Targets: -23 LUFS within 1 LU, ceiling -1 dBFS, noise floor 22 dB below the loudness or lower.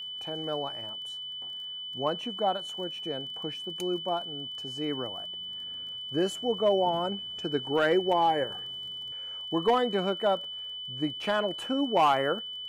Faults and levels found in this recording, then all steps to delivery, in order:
ticks 24/s; steady tone 3000 Hz; tone level -36 dBFS; loudness -30.0 LUFS; peak -15.5 dBFS; loudness target -23.0 LUFS
-> de-click; notch 3000 Hz, Q 30; gain +7 dB

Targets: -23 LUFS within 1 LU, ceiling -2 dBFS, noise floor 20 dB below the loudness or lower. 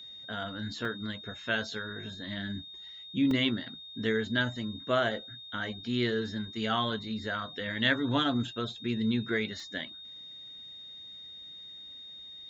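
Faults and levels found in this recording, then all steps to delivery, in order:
dropouts 3; longest dropout 2.2 ms; steady tone 3700 Hz; tone level -44 dBFS; loudness -32.0 LUFS; peak -13.0 dBFS; loudness target -23.0 LUFS
-> interpolate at 0.85/3.31/9.6, 2.2 ms; notch 3700 Hz, Q 30; gain +9 dB

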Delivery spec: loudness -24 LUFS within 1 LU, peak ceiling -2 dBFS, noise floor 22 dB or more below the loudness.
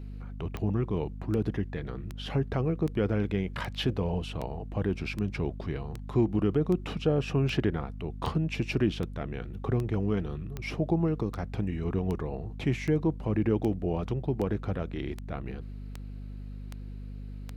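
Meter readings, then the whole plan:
clicks 23; hum 50 Hz; harmonics up to 250 Hz; hum level -37 dBFS; loudness -31.0 LUFS; peak -13.5 dBFS; loudness target -24.0 LUFS
-> de-click; notches 50/100/150/200/250 Hz; gain +7 dB

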